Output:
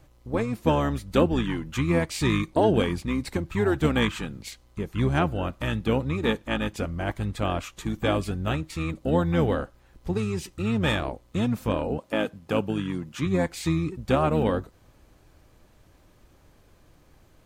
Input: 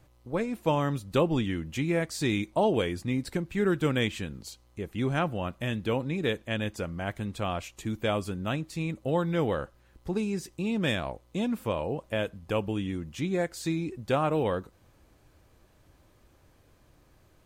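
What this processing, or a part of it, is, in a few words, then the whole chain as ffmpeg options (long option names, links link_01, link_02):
octave pedal: -filter_complex "[0:a]asplit=2[link_01][link_02];[link_02]asetrate=22050,aresample=44100,atempo=2,volume=-4dB[link_03];[link_01][link_03]amix=inputs=2:normalize=0,asettb=1/sr,asplit=3[link_04][link_05][link_06];[link_04]atrim=end=11.984[link_07];[link_05]atrim=start=11.98:end=13.26,asetpts=PTS-STARTPTS,afade=type=in:duration=0.004:curve=qsin,afade=type=out:start_time=1.276:duration=0.004:curve=qsin,highpass=130[link_08];[link_06]atrim=start=13.256[link_09];[link_07][link_08]acrossfade=duration=0.004:curve1=hsin:curve2=qsin[link_10];[link_10][link_09]acrossfade=duration=0.004:curve1=qsin:curve2=hsin,volume=2.5dB"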